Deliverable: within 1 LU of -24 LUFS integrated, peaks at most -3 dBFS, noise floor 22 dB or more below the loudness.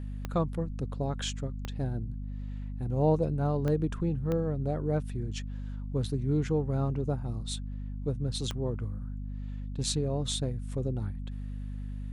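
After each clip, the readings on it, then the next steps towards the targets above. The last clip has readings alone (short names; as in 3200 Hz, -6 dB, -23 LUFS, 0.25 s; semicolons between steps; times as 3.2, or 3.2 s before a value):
clicks 5; hum 50 Hz; harmonics up to 250 Hz; hum level -34 dBFS; loudness -32.5 LUFS; peak -15.0 dBFS; loudness target -24.0 LUFS
-> de-click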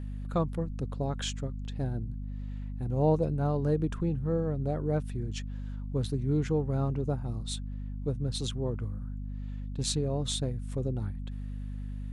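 clicks 0; hum 50 Hz; harmonics up to 250 Hz; hum level -34 dBFS
-> notches 50/100/150/200/250 Hz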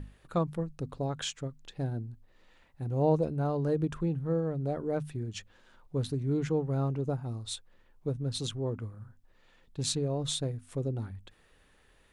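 hum none; loudness -33.0 LUFS; peak -14.0 dBFS; loudness target -24.0 LUFS
-> gain +9 dB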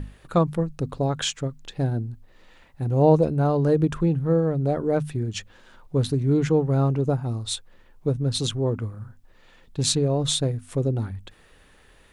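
loudness -24.0 LUFS; peak -5.0 dBFS; noise floor -55 dBFS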